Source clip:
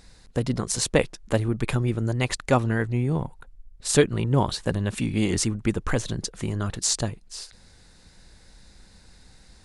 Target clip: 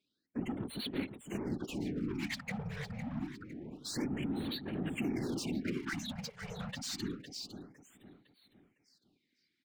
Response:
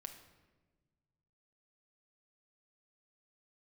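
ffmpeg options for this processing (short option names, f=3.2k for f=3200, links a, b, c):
-filter_complex "[0:a]highpass=130,afftdn=nr=31:nf=-35,adynamicequalizer=threshold=0.0141:dfrequency=210:dqfactor=2:tfrequency=210:tqfactor=2:attack=5:release=100:ratio=0.375:range=1.5:mode=boostabove:tftype=bell,asplit=2[a][b];[b]alimiter=limit=-15dB:level=0:latency=1:release=32,volume=-1.5dB[c];[a][c]amix=inputs=2:normalize=0,acontrast=55,asplit=3[d][e][f];[d]bandpass=f=270:t=q:w=8,volume=0dB[g];[e]bandpass=f=2.29k:t=q:w=8,volume=-6dB[h];[f]bandpass=f=3.01k:t=q:w=8,volume=-9dB[i];[g][h][i]amix=inputs=3:normalize=0,asoftclip=type=tanh:threshold=-27dB,asplit=2[j][k];[k]highpass=f=720:p=1,volume=24dB,asoftclip=type=tanh:threshold=-27dB[l];[j][l]amix=inputs=2:normalize=0,lowpass=f=5.4k:p=1,volume=-6dB,afftfilt=real='hypot(re,im)*cos(2*PI*random(0))':imag='hypot(re,im)*sin(2*PI*random(1))':win_size=512:overlap=0.75,asplit=2[m][n];[n]aecho=0:1:507|1014|1521|2028:0.316|0.123|0.0481|0.0188[o];[m][o]amix=inputs=2:normalize=0,afftfilt=real='re*(1-between(b*sr/1024,290*pow(6500/290,0.5+0.5*sin(2*PI*0.27*pts/sr))/1.41,290*pow(6500/290,0.5+0.5*sin(2*PI*0.27*pts/sr))*1.41))':imag='im*(1-between(b*sr/1024,290*pow(6500/290,0.5+0.5*sin(2*PI*0.27*pts/sr))/1.41,290*pow(6500/290,0.5+0.5*sin(2*PI*0.27*pts/sr))*1.41))':win_size=1024:overlap=0.75,volume=1dB"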